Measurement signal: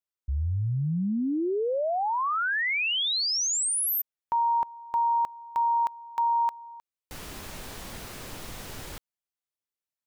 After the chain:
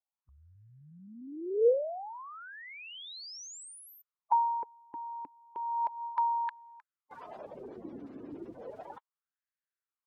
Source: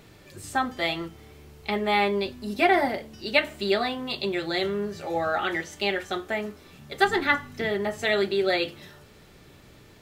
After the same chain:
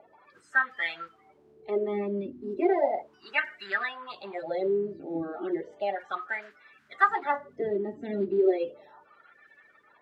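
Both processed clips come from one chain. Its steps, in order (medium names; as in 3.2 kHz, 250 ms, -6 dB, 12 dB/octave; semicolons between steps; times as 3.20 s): coarse spectral quantiser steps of 30 dB; wah-wah 0.34 Hz 280–1700 Hz, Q 4.8; trim +7.5 dB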